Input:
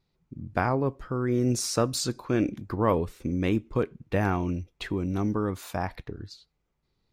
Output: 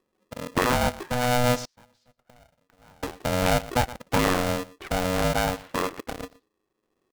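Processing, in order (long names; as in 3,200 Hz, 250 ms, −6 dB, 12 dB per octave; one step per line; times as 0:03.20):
on a send: single-tap delay 120 ms −17 dB
on the sum: low-pass that shuts in the quiet parts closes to 760 Hz, open at −22.5 dBFS
in parallel at −7 dB: bit-depth reduction 6 bits, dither none
0:01.65–0:03.03: on the sum: gate with flip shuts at −27 dBFS, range −34 dB
high-frequency loss of the air 170 metres
ring modulator with a square carrier 370 Hz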